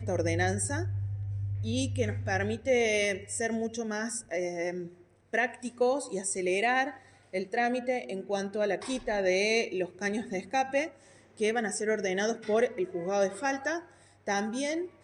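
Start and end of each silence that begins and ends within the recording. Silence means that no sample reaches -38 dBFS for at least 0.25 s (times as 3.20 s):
4.87–5.33 s
6.94–7.33 s
10.88–11.40 s
13.80–14.27 s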